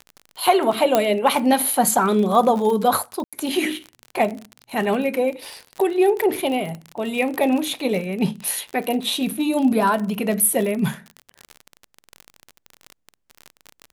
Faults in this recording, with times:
crackle 37 per s -25 dBFS
0.95 s: pop -3 dBFS
3.24–3.33 s: dropout 86 ms

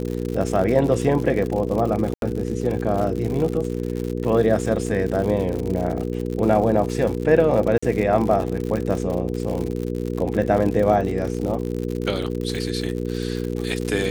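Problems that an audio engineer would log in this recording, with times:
crackle 89 per s -26 dBFS
hum 60 Hz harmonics 8 -26 dBFS
2.14–2.22 s: dropout 82 ms
7.78–7.83 s: dropout 45 ms

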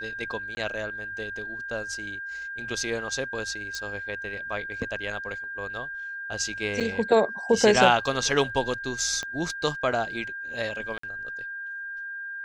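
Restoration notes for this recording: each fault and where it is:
whine 1.6 kHz -33 dBFS
0.55–0.57 s: dropout 20 ms
3.75 s: pop -20 dBFS
6.80–6.81 s: dropout 6.7 ms
9.23 s: pop -18 dBFS
10.98–11.03 s: dropout 54 ms

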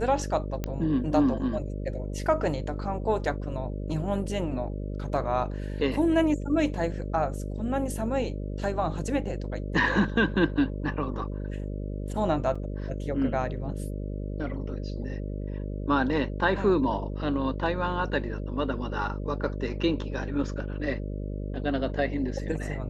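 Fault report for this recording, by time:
buzz 50 Hz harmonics 12 -33 dBFS
0.64 s: pop -16 dBFS
12.55–12.56 s: dropout 5.3 ms

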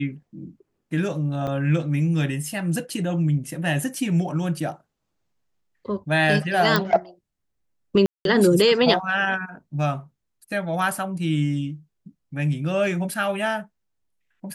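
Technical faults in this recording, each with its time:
1.47–1.48 s: dropout 5.6 ms
6.76 s: pop -5 dBFS
8.06–8.25 s: dropout 192 ms

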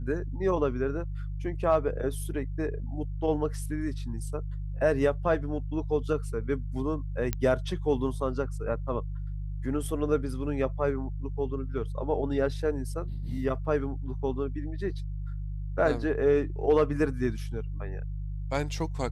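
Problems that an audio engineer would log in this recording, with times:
hum 50 Hz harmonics 3 -34 dBFS
7.33 s: pop -13 dBFS

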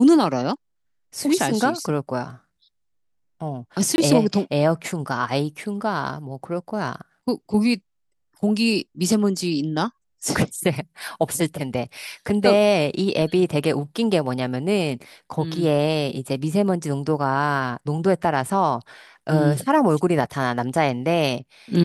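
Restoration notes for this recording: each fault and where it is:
3.96–3.98 s: dropout 21 ms

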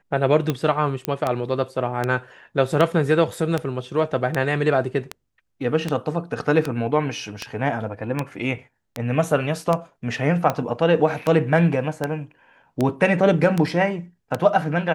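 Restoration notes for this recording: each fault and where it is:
tick 78 rpm -9 dBFS
1.05 s: pop -8 dBFS

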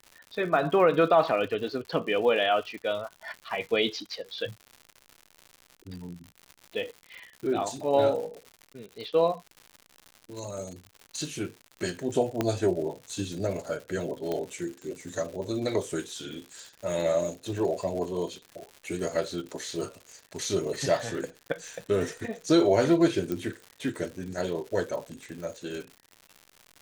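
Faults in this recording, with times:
crackle 160 per s -37 dBFS
12.41 s: pop -12 dBFS
14.32 s: pop -18 dBFS
23.32 s: pop -18 dBFS

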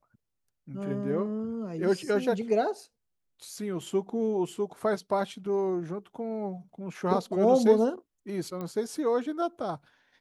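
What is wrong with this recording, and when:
8.61 s: pop -24 dBFS

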